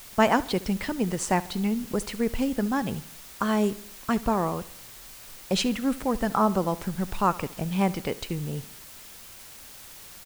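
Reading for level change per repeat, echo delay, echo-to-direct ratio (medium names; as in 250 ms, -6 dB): -6.0 dB, 71 ms, -17.5 dB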